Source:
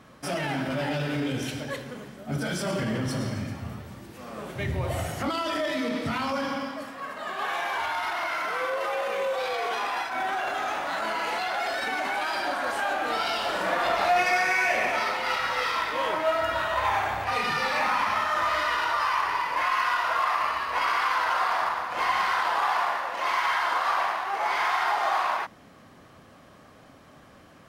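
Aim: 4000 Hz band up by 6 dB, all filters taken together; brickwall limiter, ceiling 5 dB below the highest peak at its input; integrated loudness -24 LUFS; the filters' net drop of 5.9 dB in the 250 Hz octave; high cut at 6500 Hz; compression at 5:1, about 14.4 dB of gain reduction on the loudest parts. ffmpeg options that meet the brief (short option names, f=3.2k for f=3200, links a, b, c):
-af "lowpass=6.5k,equalizer=f=250:t=o:g=-7.5,equalizer=f=4k:t=o:g=8.5,acompressor=threshold=-36dB:ratio=5,volume=14dB,alimiter=limit=-15.5dB:level=0:latency=1"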